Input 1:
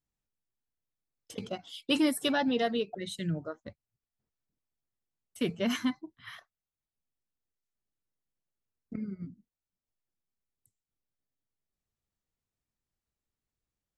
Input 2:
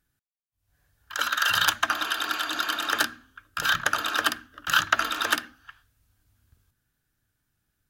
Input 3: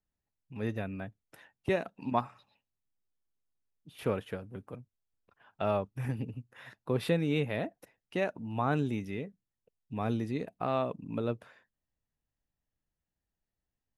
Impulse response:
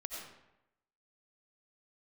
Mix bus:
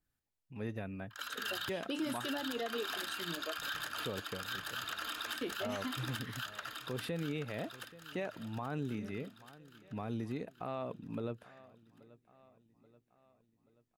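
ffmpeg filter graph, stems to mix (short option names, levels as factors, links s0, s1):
-filter_complex "[0:a]lowshelf=f=210:t=q:w=1.5:g=-12,flanger=delay=6.6:depth=7.9:regen=53:speed=0.82:shape=sinusoidal,volume=0.944[s0];[1:a]bandreject=f=6000:w=8,volume=2.82,asoftclip=hard,volume=0.355,adynamicequalizer=threshold=0.0141:dfrequency=2000:dqfactor=0.7:tfrequency=2000:tqfactor=0.7:attack=5:release=100:ratio=0.375:range=2.5:mode=boostabove:tftype=highshelf,volume=0.299,asplit=2[s1][s2];[s2]volume=0.531[s3];[2:a]acontrast=37,volume=0.335,asplit=3[s4][s5][s6];[s5]volume=0.0631[s7];[s6]apad=whole_len=348238[s8];[s1][s8]sidechaincompress=threshold=0.00398:ratio=6:attack=48:release=808[s9];[s3][s7]amix=inputs=2:normalize=0,aecho=0:1:831|1662|2493|3324|4155|4986|5817|6648:1|0.52|0.27|0.141|0.0731|0.038|0.0198|0.0103[s10];[s0][s9][s4][s10]amix=inputs=4:normalize=0,alimiter=level_in=1.68:limit=0.0631:level=0:latency=1:release=87,volume=0.596"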